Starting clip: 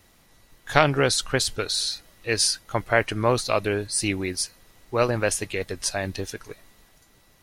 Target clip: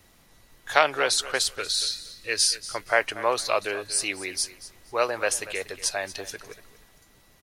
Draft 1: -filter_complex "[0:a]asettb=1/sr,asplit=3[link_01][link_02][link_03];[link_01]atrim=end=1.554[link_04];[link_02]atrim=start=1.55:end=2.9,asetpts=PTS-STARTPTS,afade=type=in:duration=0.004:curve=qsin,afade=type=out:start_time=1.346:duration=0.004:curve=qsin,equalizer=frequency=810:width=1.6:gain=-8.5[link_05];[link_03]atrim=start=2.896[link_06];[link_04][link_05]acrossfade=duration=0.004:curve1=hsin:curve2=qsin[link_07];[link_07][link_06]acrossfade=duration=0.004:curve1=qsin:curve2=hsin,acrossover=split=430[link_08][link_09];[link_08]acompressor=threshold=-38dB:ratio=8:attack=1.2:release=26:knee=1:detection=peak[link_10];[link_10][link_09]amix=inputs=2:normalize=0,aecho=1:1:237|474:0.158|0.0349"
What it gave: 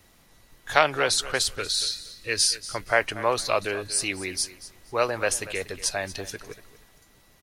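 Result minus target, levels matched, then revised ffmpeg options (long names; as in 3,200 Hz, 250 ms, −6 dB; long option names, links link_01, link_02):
downward compressor: peak gain reduction −10 dB
-filter_complex "[0:a]asettb=1/sr,asplit=3[link_01][link_02][link_03];[link_01]atrim=end=1.554[link_04];[link_02]atrim=start=1.55:end=2.9,asetpts=PTS-STARTPTS,afade=type=in:duration=0.004:curve=qsin,afade=type=out:start_time=1.346:duration=0.004:curve=qsin,equalizer=frequency=810:width=1.6:gain=-8.5[link_05];[link_03]atrim=start=2.896[link_06];[link_04][link_05]acrossfade=duration=0.004:curve1=hsin:curve2=qsin[link_07];[link_07][link_06]acrossfade=duration=0.004:curve1=qsin:curve2=hsin,acrossover=split=430[link_08][link_09];[link_08]acompressor=threshold=-49.5dB:ratio=8:attack=1.2:release=26:knee=1:detection=peak[link_10];[link_10][link_09]amix=inputs=2:normalize=0,aecho=1:1:237|474:0.158|0.0349"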